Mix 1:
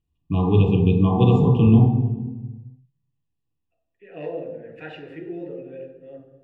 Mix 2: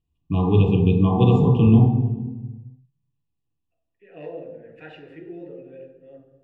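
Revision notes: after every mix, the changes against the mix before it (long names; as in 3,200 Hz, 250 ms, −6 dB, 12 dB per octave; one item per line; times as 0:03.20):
second voice −4.5 dB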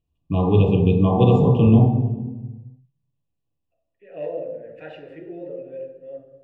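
master: add parametric band 580 Hz +13.5 dB 0.37 octaves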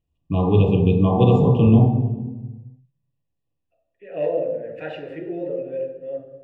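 second voice +6.5 dB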